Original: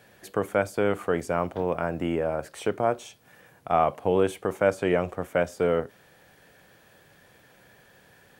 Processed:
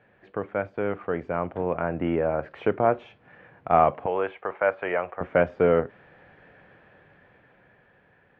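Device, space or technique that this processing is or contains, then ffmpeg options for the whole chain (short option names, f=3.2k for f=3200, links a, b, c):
action camera in a waterproof case: -filter_complex "[0:a]asettb=1/sr,asplit=3[a][b][c];[a]atrim=end=4.064[d];[b]atrim=start=4.06:end=5.21,asetpts=PTS-STARTPTS,afade=t=in:d=0.004:c=qsin,afade=t=out:st=1.146:d=0.004:c=qsin,acrossover=split=550 3800:gain=0.126 1 0.0631[e][f][g];[e][f][g]amix=inputs=3:normalize=0[h];[c]atrim=start=5.206[i];[d][h]acrossfade=d=0.004:c1=hsin:c2=qsin[j];[j][i]acrossfade=d=0.004:c1=qsin:c2=hsin,lowpass=f=2.5k:w=0.5412,lowpass=f=2.5k:w=1.3066,dynaudnorm=f=270:g=13:m=11.5dB,volume=-4dB" -ar 24000 -c:a aac -b:a 64k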